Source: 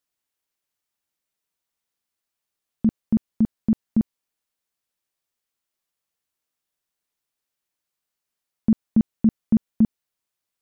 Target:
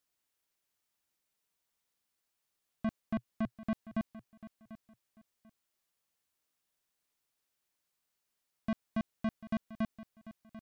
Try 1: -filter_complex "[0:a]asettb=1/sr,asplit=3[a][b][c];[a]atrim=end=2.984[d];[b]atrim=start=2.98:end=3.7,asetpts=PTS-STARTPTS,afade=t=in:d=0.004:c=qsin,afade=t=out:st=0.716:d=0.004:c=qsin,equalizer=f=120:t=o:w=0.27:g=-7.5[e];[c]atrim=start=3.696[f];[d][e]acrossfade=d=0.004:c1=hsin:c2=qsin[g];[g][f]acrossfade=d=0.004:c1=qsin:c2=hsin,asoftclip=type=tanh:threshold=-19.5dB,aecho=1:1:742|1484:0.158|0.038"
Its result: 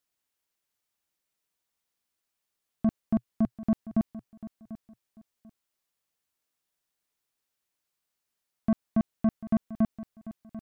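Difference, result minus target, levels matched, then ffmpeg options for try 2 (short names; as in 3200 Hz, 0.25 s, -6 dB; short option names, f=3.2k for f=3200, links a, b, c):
soft clip: distortion -5 dB
-filter_complex "[0:a]asettb=1/sr,asplit=3[a][b][c];[a]atrim=end=2.984[d];[b]atrim=start=2.98:end=3.7,asetpts=PTS-STARTPTS,afade=t=in:d=0.004:c=qsin,afade=t=out:st=0.716:d=0.004:c=qsin,equalizer=f=120:t=o:w=0.27:g=-7.5[e];[c]atrim=start=3.696[f];[d][e]acrossfade=d=0.004:c1=hsin:c2=qsin[g];[g][f]acrossfade=d=0.004:c1=qsin:c2=hsin,asoftclip=type=tanh:threshold=-29.5dB,aecho=1:1:742|1484:0.158|0.038"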